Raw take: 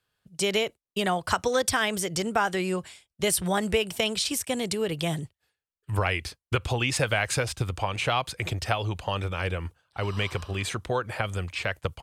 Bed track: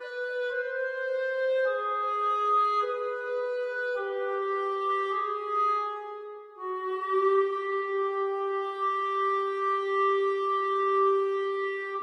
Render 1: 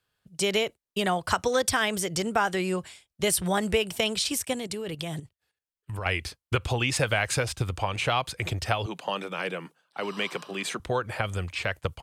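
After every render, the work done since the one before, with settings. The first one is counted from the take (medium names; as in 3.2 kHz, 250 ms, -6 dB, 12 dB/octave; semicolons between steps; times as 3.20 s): 4.53–6.06 s: level held to a coarse grid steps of 11 dB; 8.86–10.80 s: steep high-pass 160 Hz 48 dB/octave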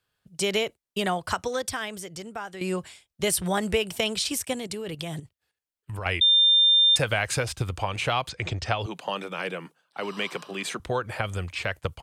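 1.04–2.61 s: fade out quadratic, to -11.5 dB; 6.21–6.96 s: bleep 3.6 kHz -15 dBFS; 8.29–8.81 s: low-pass 7 kHz 24 dB/octave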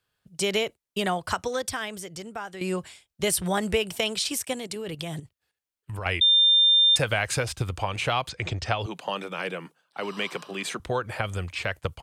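3.95–4.76 s: bass shelf 130 Hz -9.5 dB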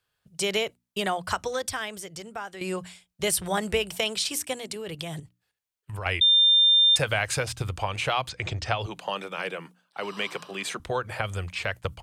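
peaking EQ 260 Hz -4 dB 1.1 oct; hum notches 60/120/180/240/300 Hz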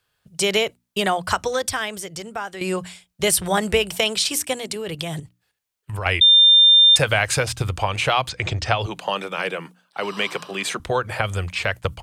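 trim +6.5 dB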